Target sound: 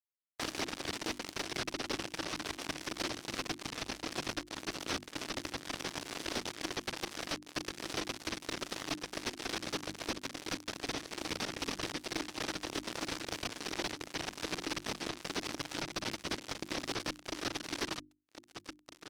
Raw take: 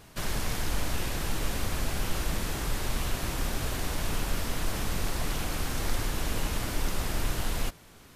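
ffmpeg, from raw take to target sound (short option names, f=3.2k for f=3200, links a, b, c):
-filter_complex "[0:a]areverse,acompressor=mode=upward:threshold=-48dB:ratio=2.5,areverse,bass=f=250:g=-1,treble=f=4k:g=4,asplit=2[a][b];[b]aecho=0:1:683|1366|2049|2732|3415:0.282|0.144|0.0733|0.0374|0.0191[c];[a][c]amix=inputs=2:normalize=0,aeval=exprs='0.251*(cos(1*acos(clip(val(0)/0.251,-1,1)))-cos(1*PI/2))+0.0708*(cos(2*acos(clip(val(0)/0.251,-1,1)))-cos(2*PI/2))+0.00631*(cos(4*acos(clip(val(0)/0.251,-1,1)))-cos(4*PI/2))+0.00631*(cos(7*acos(clip(val(0)/0.251,-1,1)))-cos(7*PI/2))+0.00141*(cos(8*acos(clip(val(0)/0.251,-1,1)))-cos(8*PI/2))':c=same,acompressor=threshold=-34dB:ratio=3,asetrate=18846,aresample=44100,acrusher=bits=4:mix=0:aa=0.5,highpass=f=180:p=1,equalizer=f=310:t=o:w=0.57:g=10,bandreject=f=50:t=h:w=6,bandreject=f=100:t=h:w=6,bandreject=f=150:t=h:w=6,bandreject=f=200:t=h:w=6,bandreject=f=250:t=h:w=6,bandreject=f=300:t=h:w=6,bandreject=f=350:t=h:w=6"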